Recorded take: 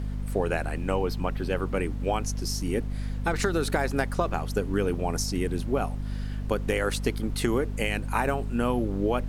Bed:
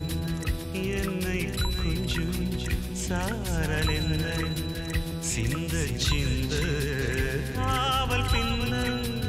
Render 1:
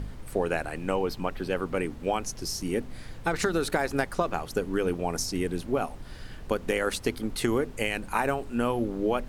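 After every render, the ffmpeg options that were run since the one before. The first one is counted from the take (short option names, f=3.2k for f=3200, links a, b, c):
-af "bandreject=f=50:t=h:w=4,bandreject=f=100:t=h:w=4,bandreject=f=150:t=h:w=4,bandreject=f=200:t=h:w=4,bandreject=f=250:t=h:w=4"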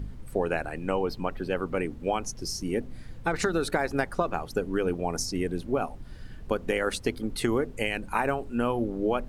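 -af "afftdn=nr=8:nf=-42"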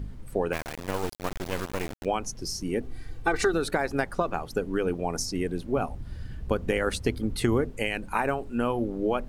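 -filter_complex "[0:a]asplit=3[a][b][c];[a]afade=t=out:st=0.52:d=0.02[d];[b]acrusher=bits=3:dc=4:mix=0:aa=0.000001,afade=t=in:st=0.52:d=0.02,afade=t=out:st=2.04:d=0.02[e];[c]afade=t=in:st=2.04:d=0.02[f];[d][e][f]amix=inputs=3:normalize=0,asettb=1/sr,asplit=3[g][h][i];[g]atrim=end=2.834[j];[h]atrim=start=2.83:end=3.54,asetpts=PTS-STARTPTS,afade=t=in:d=0.004:c=qsin,afade=t=out:st=0.706:d=0.004:c=qsin,aecho=1:1:2.6:0.73,atrim=end_sample=31311[k];[i]atrim=start=3.536[l];[j][k]acrossfade=d=0.004:c1=hsin:c2=qsin[m];[m][l]acrossfade=d=0.004:c1=qsin:c2=hsin,asettb=1/sr,asplit=3[n][o][p];[n]atrim=end=5.754[q];[o]atrim=start=5.75:end=7.7,asetpts=PTS-STARTPTS,afade=t=in:d=0.004:c=qsin,afade=t=out:st=1.946:d=0.004:c=qsin,equalizer=f=71:w=0.62:g=10[r];[p]atrim=start=7.696[s];[q][r]acrossfade=d=0.004:c1=hsin:c2=qsin[t];[t][s]acrossfade=d=0.004:c1=qsin:c2=hsin"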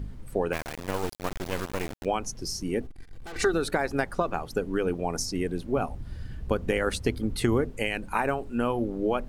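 -filter_complex "[0:a]asettb=1/sr,asplit=3[a][b][c];[a]atrim=end=2.864[d];[b]atrim=start=2.86:end=3.36,asetpts=PTS-STARTPTS,afade=t=in:d=0.004:c=qsin,afade=t=out:st=0.496:d=0.004:c=qsin,aeval=exprs='(tanh(89.1*val(0)+0.6)-tanh(0.6))/89.1':c=same[e];[c]atrim=start=3.356[f];[d][e]acrossfade=d=0.004:c1=hsin:c2=qsin[g];[g][f]acrossfade=d=0.004:c1=qsin:c2=hsin"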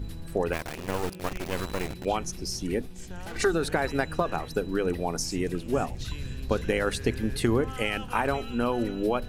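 -filter_complex "[1:a]volume=-13.5dB[a];[0:a][a]amix=inputs=2:normalize=0"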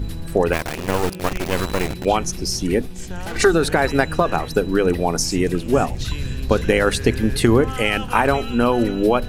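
-af "volume=9.5dB,alimiter=limit=-3dB:level=0:latency=1"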